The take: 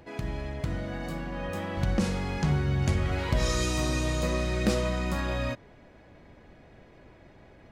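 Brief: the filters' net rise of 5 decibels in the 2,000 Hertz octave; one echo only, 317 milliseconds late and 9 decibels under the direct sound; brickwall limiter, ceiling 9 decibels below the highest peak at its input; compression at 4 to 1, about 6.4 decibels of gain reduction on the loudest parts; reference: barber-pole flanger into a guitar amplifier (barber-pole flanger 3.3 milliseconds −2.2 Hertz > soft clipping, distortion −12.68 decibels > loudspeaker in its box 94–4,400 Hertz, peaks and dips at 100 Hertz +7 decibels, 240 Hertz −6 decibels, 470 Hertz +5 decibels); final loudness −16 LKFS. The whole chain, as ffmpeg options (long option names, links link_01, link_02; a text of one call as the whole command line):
ffmpeg -i in.wav -filter_complex "[0:a]equalizer=frequency=2000:width_type=o:gain=6,acompressor=threshold=-28dB:ratio=4,alimiter=level_in=2.5dB:limit=-24dB:level=0:latency=1,volume=-2.5dB,aecho=1:1:317:0.355,asplit=2[link_01][link_02];[link_02]adelay=3.3,afreqshift=-2.2[link_03];[link_01][link_03]amix=inputs=2:normalize=1,asoftclip=threshold=-36dB,highpass=94,equalizer=frequency=100:width_type=q:width=4:gain=7,equalizer=frequency=240:width_type=q:width=4:gain=-6,equalizer=frequency=470:width_type=q:width=4:gain=5,lowpass=frequency=4400:width=0.5412,lowpass=frequency=4400:width=1.3066,volume=26dB" out.wav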